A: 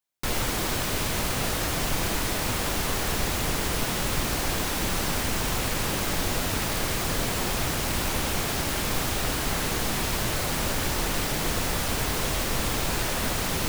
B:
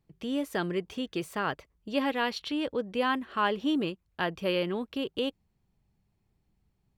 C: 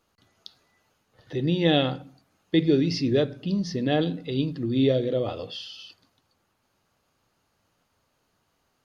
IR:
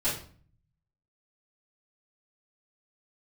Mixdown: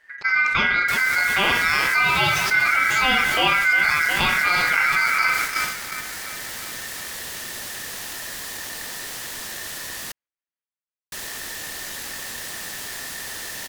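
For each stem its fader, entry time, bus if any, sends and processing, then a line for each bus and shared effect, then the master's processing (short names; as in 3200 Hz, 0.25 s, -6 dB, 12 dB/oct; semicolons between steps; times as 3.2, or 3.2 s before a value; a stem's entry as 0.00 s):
-2.5 dB, 0.65 s, muted 10.12–11.12, no send, no echo send, passive tone stack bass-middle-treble 5-5-5
+2.0 dB, 0.00 s, send -6 dB, echo send -8 dB, LPF 2900 Hz 12 dB/oct
-5.0 dB, 0.00 s, no send, echo send -15 dB, dry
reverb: on, RT60 0.45 s, pre-delay 3 ms
echo: feedback echo 0.357 s, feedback 57%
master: ring modulator 1800 Hz; gate -34 dBFS, range -29 dB; fast leveller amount 70%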